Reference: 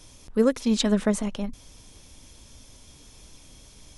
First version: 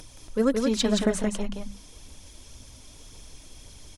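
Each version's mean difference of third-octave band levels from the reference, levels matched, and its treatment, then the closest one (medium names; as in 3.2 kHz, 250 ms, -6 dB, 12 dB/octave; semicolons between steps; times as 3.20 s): 3.5 dB: hum notches 50/100/150/200 Hz; upward compressor, threshold -44 dBFS; phaser 1.9 Hz, delay 3.3 ms, feedback 43%; on a send: delay 173 ms -4 dB; on the sum: trim -1.5 dB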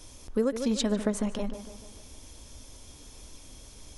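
5.0 dB: peaking EQ 150 Hz -6.5 dB 0.87 oct; tape echo 149 ms, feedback 53%, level -10 dB, low-pass 2.2 kHz; compression 3:1, threshold -27 dBFS, peak gain reduction 8.5 dB; peaking EQ 2.6 kHz -3.5 dB 2.5 oct; trim +2.5 dB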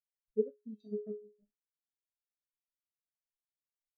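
15.0 dB: on a send: early reflections 23 ms -11 dB, 38 ms -9 dB, 58 ms -15.5 dB, 71 ms -13.5 dB; on the sum: transient shaper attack +9 dB, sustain -6 dB; feedback comb 140 Hz, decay 0.71 s, harmonics odd, mix 90%; spectral contrast expander 2.5:1; trim -2 dB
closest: first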